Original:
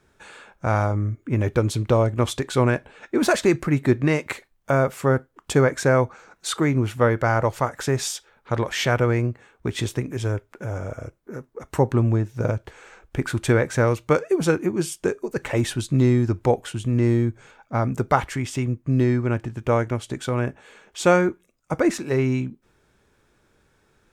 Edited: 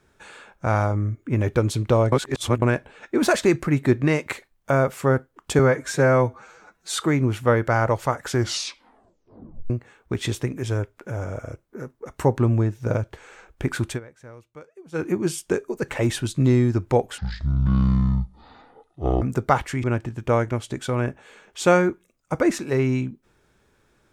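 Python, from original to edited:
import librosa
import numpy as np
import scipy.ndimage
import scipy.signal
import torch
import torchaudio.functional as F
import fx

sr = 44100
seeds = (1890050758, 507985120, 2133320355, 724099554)

y = fx.edit(x, sr, fx.reverse_span(start_s=2.12, length_s=0.5),
    fx.stretch_span(start_s=5.59, length_s=0.92, factor=1.5),
    fx.tape_stop(start_s=7.79, length_s=1.45),
    fx.fade_down_up(start_s=13.41, length_s=1.18, db=-24.0, fade_s=0.13),
    fx.speed_span(start_s=16.72, length_s=1.12, speed=0.55),
    fx.cut(start_s=18.46, length_s=0.77), tone=tone)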